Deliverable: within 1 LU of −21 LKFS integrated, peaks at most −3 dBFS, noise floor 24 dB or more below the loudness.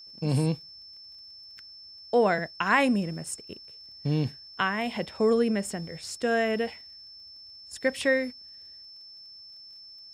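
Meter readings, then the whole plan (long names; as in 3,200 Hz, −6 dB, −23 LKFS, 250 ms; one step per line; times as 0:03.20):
crackle rate 21 per second; interfering tone 5,300 Hz; level of the tone −45 dBFS; integrated loudness −27.5 LKFS; sample peak −8.5 dBFS; target loudness −21.0 LKFS
→ click removal
notch filter 5,300 Hz, Q 30
level +6.5 dB
brickwall limiter −3 dBFS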